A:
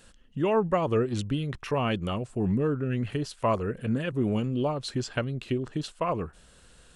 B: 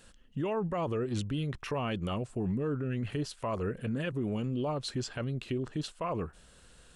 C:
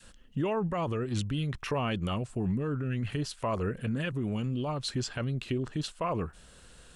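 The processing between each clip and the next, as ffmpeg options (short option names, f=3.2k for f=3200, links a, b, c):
-af "alimiter=limit=-23dB:level=0:latency=1:release=29,volume=-2dB"
-af "adynamicequalizer=threshold=0.00501:dfrequency=450:dqfactor=0.78:tfrequency=450:tqfactor=0.78:attack=5:release=100:ratio=0.375:range=3.5:mode=cutabove:tftype=bell,volume=3.5dB"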